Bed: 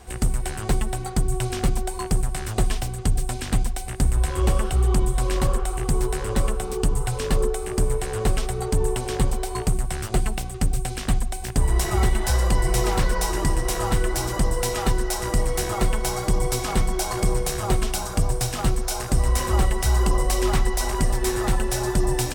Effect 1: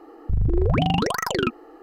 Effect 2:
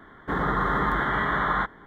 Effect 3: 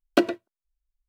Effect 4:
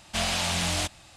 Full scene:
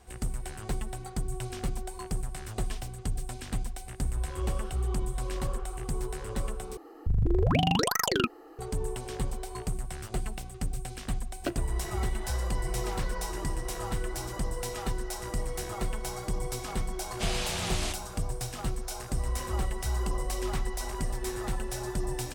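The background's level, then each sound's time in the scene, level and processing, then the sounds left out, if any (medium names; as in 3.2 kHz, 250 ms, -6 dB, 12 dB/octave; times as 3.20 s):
bed -10.5 dB
6.77 s: replace with 1 -4.5 dB + treble shelf 4.2 kHz +10.5 dB
11.29 s: add 3 -13 dB + block-companded coder 7-bit
17.06 s: add 4 -6.5 dB
not used: 2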